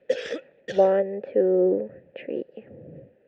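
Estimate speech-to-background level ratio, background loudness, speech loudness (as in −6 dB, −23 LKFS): 10.0 dB, −33.5 LKFS, −23.5 LKFS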